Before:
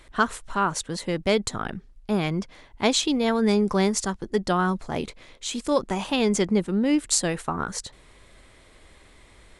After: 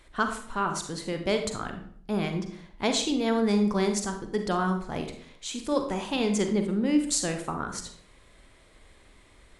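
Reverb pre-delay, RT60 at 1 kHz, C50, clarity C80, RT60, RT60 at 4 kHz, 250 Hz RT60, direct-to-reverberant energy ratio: 37 ms, 0.55 s, 7.5 dB, 11.5 dB, 0.55 s, 0.45 s, 0.65 s, 5.5 dB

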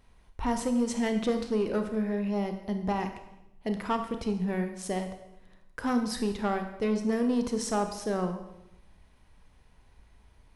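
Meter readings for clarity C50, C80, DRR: 8.5 dB, 10.5 dB, 6.5 dB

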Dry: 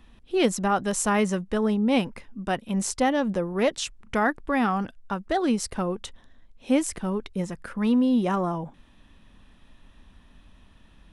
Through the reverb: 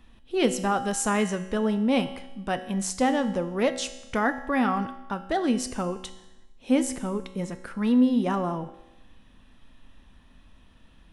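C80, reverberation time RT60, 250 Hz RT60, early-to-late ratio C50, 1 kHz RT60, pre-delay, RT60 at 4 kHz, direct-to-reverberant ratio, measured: 14.5 dB, 1.0 s, 1.0 s, 12.5 dB, 1.0 s, 4 ms, 1.0 s, 9.5 dB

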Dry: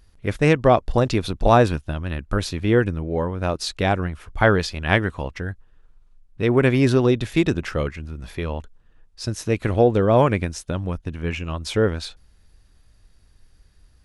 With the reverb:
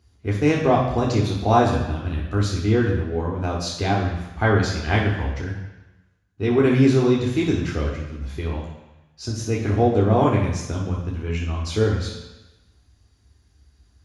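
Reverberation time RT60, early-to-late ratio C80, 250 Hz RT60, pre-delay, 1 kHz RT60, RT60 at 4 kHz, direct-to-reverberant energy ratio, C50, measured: 1.0 s, 6.5 dB, 1.0 s, 3 ms, 1.1 s, 1.1 s, -4.0 dB, 4.0 dB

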